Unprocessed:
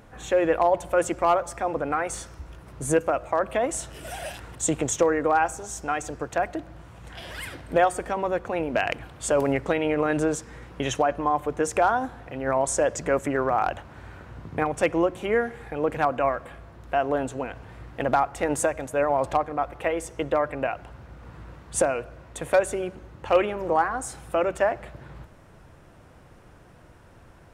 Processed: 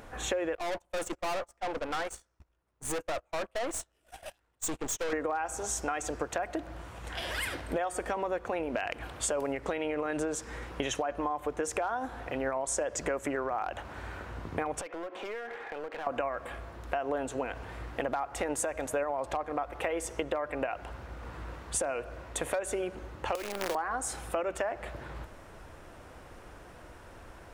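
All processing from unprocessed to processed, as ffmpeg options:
ffmpeg -i in.wav -filter_complex "[0:a]asettb=1/sr,asplit=3[link_01][link_02][link_03];[link_01]atrim=end=0.554[link_04];[link_02]atrim=start=0.55:end=5.13,asetpts=PTS-STARTPTS,afade=type=in:duration=0.004:curve=qsin,afade=type=out:start_time=4.576:duration=0.004:curve=qsin,aeval=exprs='(tanh(39.8*val(0)+0.35)-tanh(0.35))/39.8':channel_layout=same,agate=range=-34dB:threshold=-36dB:ratio=16:release=100:detection=peak[link_05];[link_03]atrim=start=5.126[link_06];[link_04][link_05]acrossfade=duration=0.004:curve1=hsin:curve2=qsin[link_07];[link_07][link_06]acrossfade=duration=0.004:curve1=qsin:curve2=hsin,asettb=1/sr,asplit=3[link_08][link_09][link_10];[link_08]atrim=end=14.814[link_11];[link_09]atrim=start=14.81:end=16.07,asetpts=PTS-STARTPTS,afade=type=in:duration=0.004:curve=qsin,afade=type=out:start_time=1.256:duration=0.004:curve=qsin,highpass=440,lowpass=3100,acompressor=threshold=-35dB:ratio=20:attack=3.2:release=140:knee=1:detection=peak,aeval=exprs='clip(val(0),-1,0.00891)':channel_layout=same[link_12];[link_10]atrim=start=16.066[link_13];[link_11][link_12]acrossfade=duration=0.004:curve1=hsin:curve2=qsin[link_14];[link_14][link_13]acrossfade=duration=0.004:curve1=qsin:curve2=hsin,asettb=1/sr,asplit=3[link_15][link_16][link_17];[link_15]atrim=end=23.354[link_18];[link_16]atrim=start=23.35:end=23.75,asetpts=PTS-STARTPTS,afade=type=in:duration=0.004:curve=qsin,afade=type=out:start_time=0.396:duration=0.004:curve=qsin,acrusher=bits=5:dc=4:mix=0:aa=0.000001,acrossover=split=120|310[link_19][link_20][link_21];[link_19]acompressor=threshold=-52dB:ratio=4[link_22];[link_20]acompressor=threshold=-41dB:ratio=4[link_23];[link_21]acompressor=threshold=-30dB:ratio=4[link_24];[link_22][link_23][link_24]amix=inputs=3:normalize=0,aeval=exprs='(mod(5.96*val(0)+1,2)-1)/5.96':channel_layout=same[link_25];[link_17]atrim=start=23.746[link_26];[link_18][link_25]acrossfade=duration=0.004:curve1=hsin:curve2=qsin[link_27];[link_27][link_26]acrossfade=duration=0.004:curve1=qsin:curve2=hsin,equalizer=frequency=140:width=0.98:gain=-9.5,alimiter=limit=-17dB:level=0:latency=1:release=97,acompressor=threshold=-33dB:ratio=6,volume=4dB" out.wav

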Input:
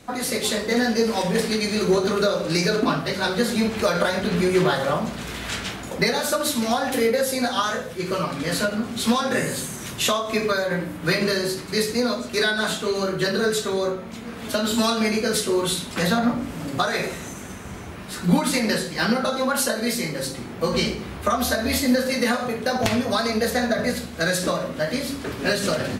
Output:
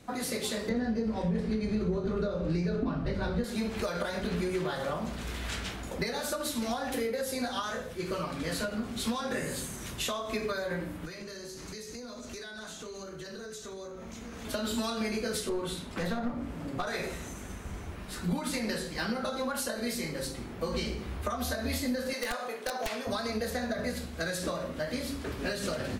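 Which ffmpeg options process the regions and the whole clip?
ffmpeg -i in.wav -filter_complex "[0:a]asettb=1/sr,asplit=3[link_01][link_02][link_03];[link_01]atrim=end=0.694[link_04];[link_02]atrim=start=0.69:end=3.44,asetpts=PTS-STARTPTS,afade=type=in:duration=0.004:curve=qsin,afade=type=out:start_time=2.746:duration=0.004:curve=qsin,aemphasis=mode=reproduction:type=riaa,asplit=2[link_05][link_06];[link_06]adelay=23,volume=-11dB[link_07];[link_05][link_07]amix=inputs=2:normalize=0,atrim=end_sample=121275[link_08];[link_03]atrim=start=3.436[link_09];[link_04][link_08]acrossfade=duration=0.004:curve1=hsin:curve2=qsin[link_10];[link_10][link_09]acrossfade=duration=0.004:curve1=qsin:curve2=hsin,asettb=1/sr,asplit=3[link_11][link_12][link_13];[link_11]atrim=end=11.054[link_14];[link_12]atrim=start=11.05:end=14.45,asetpts=PTS-STARTPTS,afade=type=in:duration=0.004:curve=qsin,afade=type=out:start_time=3.396:duration=0.004:curve=qsin,equalizer=frequency=6300:width_type=o:width=0.39:gain=10.5,acompressor=threshold=-31dB:ratio=16:attack=3.2:release=140:knee=1:detection=peak[link_15];[link_13]atrim=start=14.446[link_16];[link_14][link_15]acrossfade=duration=0.004:curve1=hsin:curve2=qsin[link_17];[link_17][link_16]acrossfade=duration=0.004:curve1=qsin:curve2=hsin,asettb=1/sr,asplit=3[link_18][link_19][link_20];[link_18]atrim=end=15.494[link_21];[link_19]atrim=start=15.49:end=16.87,asetpts=PTS-STARTPTS,afade=type=in:duration=0.004:curve=qsin,afade=type=out:start_time=1.376:duration=0.004:curve=qsin,highpass=frequency=63:poles=1,highshelf=frequency=3000:gain=-8.5,aeval=exprs='clip(val(0),-1,0.119)':channel_layout=same[link_22];[link_20]atrim=start=16.866[link_23];[link_21][link_22]acrossfade=duration=0.004:curve1=hsin:curve2=qsin[link_24];[link_24][link_23]acrossfade=duration=0.004:curve1=qsin:curve2=hsin,asettb=1/sr,asplit=3[link_25][link_26][link_27];[link_25]atrim=end=22.134[link_28];[link_26]atrim=start=22.13:end=23.07,asetpts=PTS-STARTPTS,afade=type=in:duration=0.004:curve=qsin,afade=type=out:start_time=0.936:duration=0.004:curve=qsin,highpass=460,aeval=exprs='(mod(4.47*val(0)+1,2)-1)/4.47':channel_layout=same[link_29];[link_27]atrim=start=23.066[link_30];[link_28][link_29]acrossfade=duration=0.004:curve1=hsin:curve2=qsin[link_31];[link_31][link_30]acrossfade=duration=0.004:curve1=qsin:curve2=hsin,asubboost=boost=5:cutoff=54,acompressor=threshold=-22dB:ratio=6,lowshelf=frequency=350:gain=4,volume=-8dB" out.wav

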